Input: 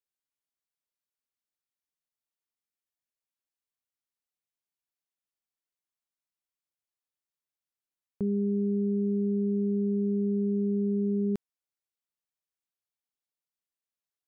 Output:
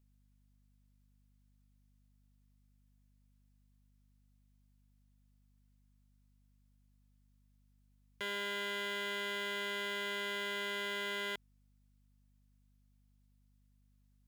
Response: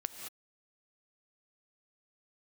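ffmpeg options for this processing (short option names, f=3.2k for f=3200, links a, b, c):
-af "aeval=exprs='(mod(53.1*val(0)+1,2)-1)/53.1':c=same,aeval=exprs='val(0)+0.0002*(sin(2*PI*50*n/s)+sin(2*PI*2*50*n/s)/2+sin(2*PI*3*50*n/s)/3+sin(2*PI*4*50*n/s)/4+sin(2*PI*5*50*n/s)/5)':c=same,aeval=exprs='0.0106*(abs(mod(val(0)/0.0106+3,4)-2)-1)':c=same,volume=5.5dB"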